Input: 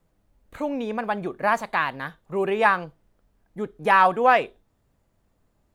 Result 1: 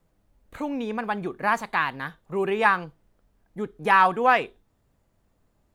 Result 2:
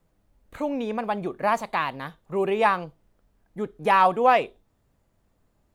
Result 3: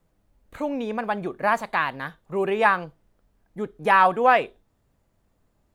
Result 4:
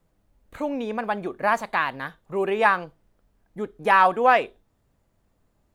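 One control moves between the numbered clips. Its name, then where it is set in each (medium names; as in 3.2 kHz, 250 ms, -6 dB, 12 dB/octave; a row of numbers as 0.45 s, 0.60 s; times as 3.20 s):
dynamic bell, frequency: 600 Hz, 1.6 kHz, 6 kHz, 150 Hz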